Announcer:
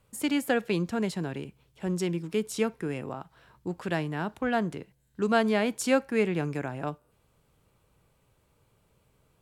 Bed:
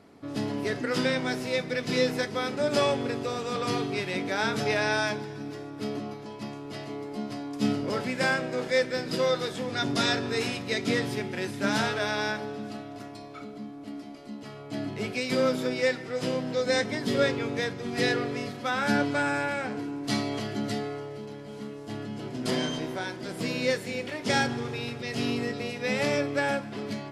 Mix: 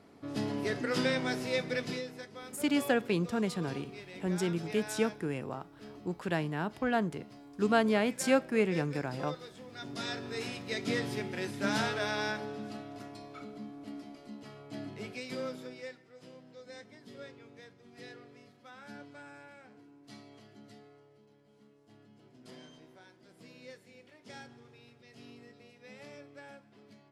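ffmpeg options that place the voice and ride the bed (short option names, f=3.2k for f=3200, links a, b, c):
-filter_complex "[0:a]adelay=2400,volume=-2.5dB[a];[1:a]volume=8.5dB,afade=t=out:st=1.8:d=0.22:silence=0.223872,afade=t=in:st=9.74:d=1.46:silence=0.251189,afade=t=out:st=13.89:d=2.16:silence=0.112202[b];[a][b]amix=inputs=2:normalize=0"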